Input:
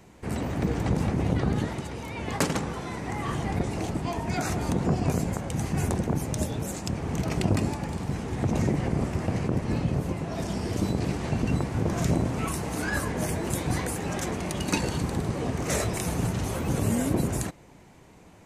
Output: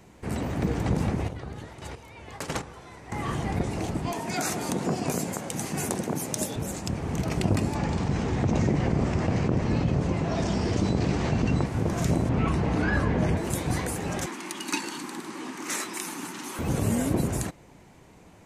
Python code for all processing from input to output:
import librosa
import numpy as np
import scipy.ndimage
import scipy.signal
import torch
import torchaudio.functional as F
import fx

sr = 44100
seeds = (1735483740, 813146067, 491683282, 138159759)

y = fx.chain(x, sr, fx.chopper(hz=1.5, depth_pct=65, duty_pct=20),
    fx.peak_eq(hz=210.0, db=-7.5, octaves=1.3), at=(1.15, 3.12))
y = fx.chain(y, sr, fx.highpass(hz=190.0, slope=12),
    fx.high_shelf(hz=4300.0, db=8.0), at=(4.12, 6.56))
y = fx.chain(y, sr, fx.lowpass(hz=7200.0, slope=24),
    fx.env_flatten(amount_pct=50), at=(7.75, 11.66))
y = fx.chain(y, sr, fx.lowpass(hz=3500.0, slope=12),
    fx.low_shelf(hz=320.0, db=5.5),
    fx.env_flatten(amount_pct=50), at=(12.29, 13.37))
y = fx.chain(y, sr, fx.highpass(hz=280.0, slope=24),
    fx.band_shelf(hz=550.0, db=-15.0, octaves=1.0), at=(14.26, 16.59))